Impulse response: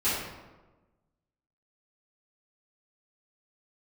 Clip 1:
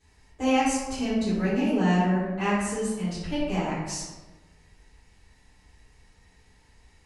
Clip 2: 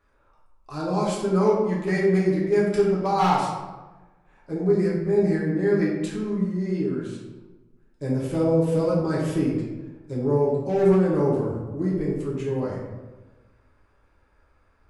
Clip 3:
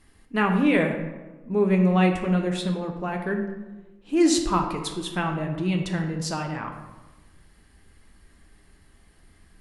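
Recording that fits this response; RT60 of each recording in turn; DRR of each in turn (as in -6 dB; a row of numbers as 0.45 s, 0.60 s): 1; 1.2 s, 1.2 s, 1.2 s; -15.0 dB, -6.0 dB, 2.5 dB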